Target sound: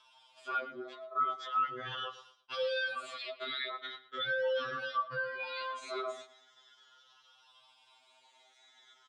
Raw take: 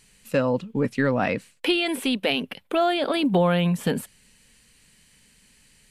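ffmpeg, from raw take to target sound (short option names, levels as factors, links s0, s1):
-filter_complex "[0:a]afftfilt=real='re*pow(10,17/40*sin(2*PI*(0.78*log(max(b,1)*sr/1024/100)/log(2)-(-0.61)*(pts-256)/sr)))':imag='im*pow(10,17/40*sin(2*PI*(0.78*log(max(b,1)*sr/1024/100)/log(2)-(-0.61)*(pts-256)/sr)))':win_size=1024:overlap=0.75,lowshelf=f=250:g=-3.5,aecho=1:1:2.7:0.46,acompressor=threshold=0.0891:ratio=3,alimiter=limit=0.0891:level=0:latency=1:release=48,atempo=0.65,aeval=exprs='val(0)*sin(2*PI*870*n/s)':c=same,highpass=190,equalizer=f=460:t=q:w=4:g=4,equalizer=f=740:t=q:w=4:g=5,equalizer=f=1400:t=q:w=4:g=9,equalizer=f=3300:t=q:w=4:g=10,lowpass=f=6000:w=0.5412,lowpass=f=6000:w=1.3066,asplit=2[s0][s1];[s1]adelay=115,lowpass=f=3300:p=1,volume=0.2,asplit=2[s2][s3];[s3]adelay=115,lowpass=f=3300:p=1,volume=0.24,asplit=2[s4][s5];[s5]adelay=115,lowpass=f=3300:p=1,volume=0.24[s6];[s2][s4][s6]amix=inputs=3:normalize=0[s7];[s0][s7]amix=inputs=2:normalize=0,afftfilt=real='re*2.45*eq(mod(b,6),0)':imag='im*2.45*eq(mod(b,6),0)':win_size=2048:overlap=0.75,volume=0.501"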